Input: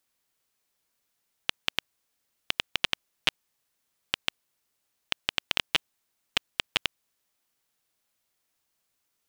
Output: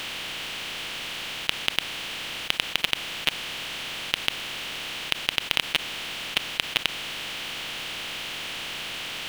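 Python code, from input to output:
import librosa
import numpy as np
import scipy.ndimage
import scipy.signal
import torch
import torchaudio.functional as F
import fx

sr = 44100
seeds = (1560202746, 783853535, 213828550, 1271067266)

p1 = fx.bin_compress(x, sr, power=0.2)
p2 = fx.quant_companded(p1, sr, bits=2)
p3 = p1 + F.gain(torch.from_numpy(p2), -11.0).numpy()
y = F.gain(torch.from_numpy(p3), -5.0).numpy()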